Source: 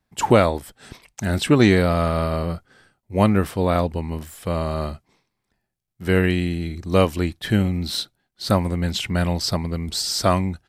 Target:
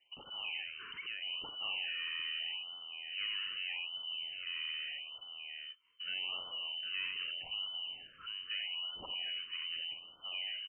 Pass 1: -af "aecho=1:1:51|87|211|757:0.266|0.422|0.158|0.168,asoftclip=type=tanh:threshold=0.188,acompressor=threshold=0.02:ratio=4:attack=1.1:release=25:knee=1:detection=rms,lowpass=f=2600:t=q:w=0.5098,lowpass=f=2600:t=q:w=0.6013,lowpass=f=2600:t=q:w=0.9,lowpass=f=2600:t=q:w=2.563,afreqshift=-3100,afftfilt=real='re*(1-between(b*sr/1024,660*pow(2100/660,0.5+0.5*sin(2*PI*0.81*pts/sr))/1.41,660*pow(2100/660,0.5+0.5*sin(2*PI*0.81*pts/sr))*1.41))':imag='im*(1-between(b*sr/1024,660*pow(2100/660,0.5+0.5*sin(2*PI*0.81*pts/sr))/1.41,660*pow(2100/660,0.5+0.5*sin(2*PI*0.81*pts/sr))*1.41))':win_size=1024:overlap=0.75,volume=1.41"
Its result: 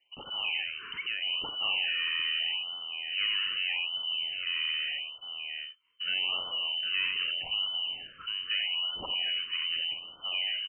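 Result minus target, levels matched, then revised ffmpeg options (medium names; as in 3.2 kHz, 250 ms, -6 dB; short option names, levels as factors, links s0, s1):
compression: peak gain reduction -8.5 dB
-af "aecho=1:1:51|87|211|757:0.266|0.422|0.158|0.168,asoftclip=type=tanh:threshold=0.188,acompressor=threshold=0.00531:ratio=4:attack=1.1:release=25:knee=1:detection=rms,lowpass=f=2600:t=q:w=0.5098,lowpass=f=2600:t=q:w=0.6013,lowpass=f=2600:t=q:w=0.9,lowpass=f=2600:t=q:w=2.563,afreqshift=-3100,afftfilt=real='re*(1-between(b*sr/1024,660*pow(2100/660,0.5+0.5*sin(2*PI*0.81*pts/sr))/1.41,660*pow(2100/660,0.5+0.5*sin(2*PI*0.81*pts/sr))*1.41))':imag='im*(1-between(b*sr/1024,660*pow(2100/660,0.5+0.5*sin(2*PI*0.81*pts/sr))/1.41,660*pow(2100/660,0.5+0.5*sin(2*PI*0.81*pts/sr))*1.41))':win_size=1024:overlap=0.75,volume=1.41"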